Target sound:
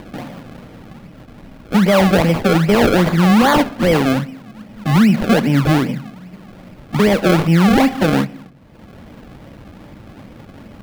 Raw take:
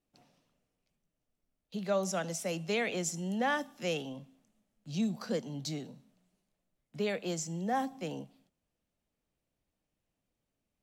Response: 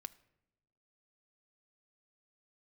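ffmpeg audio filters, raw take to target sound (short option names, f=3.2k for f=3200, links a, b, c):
-filter_complex "[0:a]highpass=f=160:p=1,bass=f=250:g=9,treble=f=4k:g=-10,asplit=2[a][b];[b]acompressor=mode=upward:threshold=-34dB:ratio=2.5,volume=1dB[c];[a][c]amix=inputs=2:normalize=0,acrusher=samples=32:mix=1:aa=0.000001:lfo=1:lforange=32:lforate=2.5,asplit=2[d][e];[1:a]atrim=start_sample=2205,lowpass=4.7k[f];[e][f]afir=irnorm=-1:irlink=0,volume=6.5dB[g];[d][g]amix=inputs=2:normalize=0,alimiter=level_in=15dB:limit=-1dB:release=50:level=0:latency=1,volume=-4.5dB"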